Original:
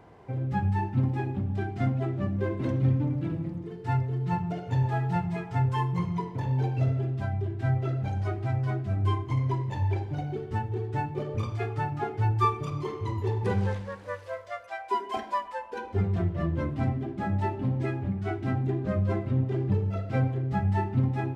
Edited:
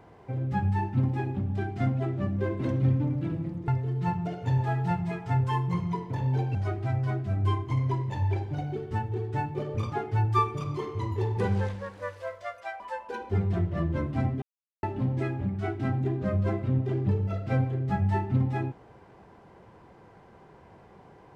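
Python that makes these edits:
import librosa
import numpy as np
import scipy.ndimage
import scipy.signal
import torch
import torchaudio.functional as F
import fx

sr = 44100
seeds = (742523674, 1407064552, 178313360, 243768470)

y = fx.edit(x, sr, fx.cut(start_s=3.68, length_s=0.25),
    fx.cut(start_s=6.8, length_s=1.35),
    fx.cut(start_s=11.52, length_s=0.46),
    fx.cut(start_s=14.86, length_s=0.57),
    fx.silence(start_s=17.05, length_s=0.41), tone=tone)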